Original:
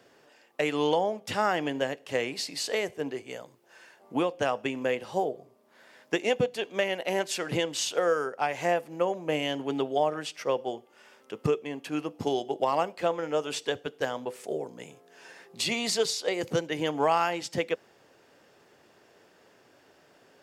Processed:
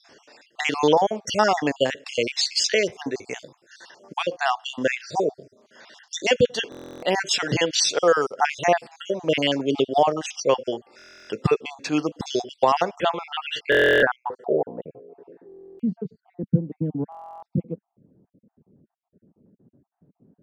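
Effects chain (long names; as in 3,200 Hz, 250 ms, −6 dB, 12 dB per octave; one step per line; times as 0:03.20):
time-frequency cells dropped at random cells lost 47%
low-pass filter sweep 5,700 Hz → 200 Hz, 0:12.78–0:15.91
buffer that repeats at 0:06.70/0:10.97/0:13.70/0:15.47/0:17.10, samples 1,024, times 13
level +8.5 dB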